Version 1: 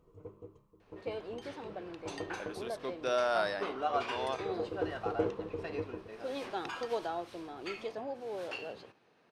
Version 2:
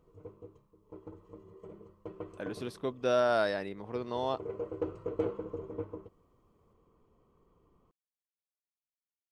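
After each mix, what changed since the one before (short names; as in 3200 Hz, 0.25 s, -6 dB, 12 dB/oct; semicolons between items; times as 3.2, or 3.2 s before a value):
speech: remove HPF 730 Hz 6 dB/oct; second sound: muted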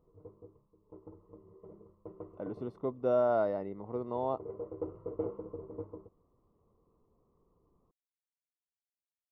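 background -3.5 dB; master: add polynomial smoothing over 65 samples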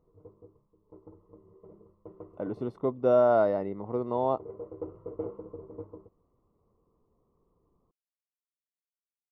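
speech +6.0 dB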